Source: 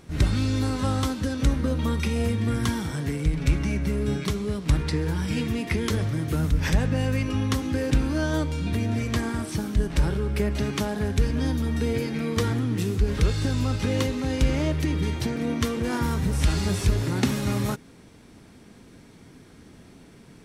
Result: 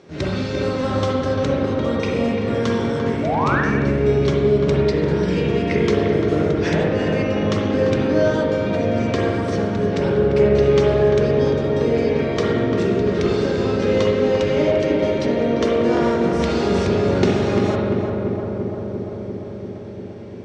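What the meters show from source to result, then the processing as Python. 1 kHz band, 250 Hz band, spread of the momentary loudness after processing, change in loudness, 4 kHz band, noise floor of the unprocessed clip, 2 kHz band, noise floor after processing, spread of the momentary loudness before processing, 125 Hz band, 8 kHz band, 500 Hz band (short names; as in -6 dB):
+9.5 dB, +6.0 dB, 7 LU, +6.5 dB, +3.0 dB, -50 dBFS, +6.5 dB, -31 dBFS, 3 LU, +2.0 dB, n/a, +14.5 dB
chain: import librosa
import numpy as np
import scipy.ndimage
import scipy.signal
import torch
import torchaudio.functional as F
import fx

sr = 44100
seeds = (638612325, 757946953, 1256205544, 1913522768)

p1 = fx.cabinet(x, sr, low_hz=100.0, low_slope=24, high_hz=6200.0, hz=(120.0, 240.0, 390.0, 570.0), db=(-9, -4, 8, 8))
p2 = p1 + fx.echo_filtered(p1, sr, ms=345, feedback_pct=79, hz=1600.0, wet_db=-4, dry=0)
p3 = fx.spec_paint(p2, sr, seeds[0], shape='rise', start_s=3.23, length_s=0.38, low_hz=590.0, high_hz=1900.0, level_db=-25.0)
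p4 = fx.rev_spring(p3, sr, rt60_s=1.2, pass_ms=(43, 59), chirp_ms=55, drr_db=-1.0)
y = F.gain(torch.from_numpy(p4), 1.0).numpy()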